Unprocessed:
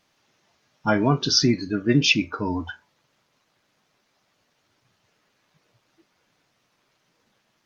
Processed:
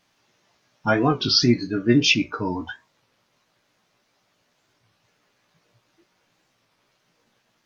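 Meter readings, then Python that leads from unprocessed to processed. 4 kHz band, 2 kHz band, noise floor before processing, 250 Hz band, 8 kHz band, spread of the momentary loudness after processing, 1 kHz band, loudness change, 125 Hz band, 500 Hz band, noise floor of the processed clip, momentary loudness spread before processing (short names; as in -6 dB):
+1.5 dB, +1.0 dB, -70 dBFS, +1.5 dB, n/a, 12 LU, +1.0 dB, +1.0 dB, -0.5 dB, +1.5 dB, -69 dBFS, 11 LU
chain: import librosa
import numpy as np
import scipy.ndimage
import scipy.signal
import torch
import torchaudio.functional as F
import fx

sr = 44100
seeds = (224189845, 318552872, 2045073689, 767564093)

y = fx.doubler(x, sr, ms=17.0, db=-6.0)
y = fx.record_warp(y, sr, rpm=33.33, depth_cents=160.0)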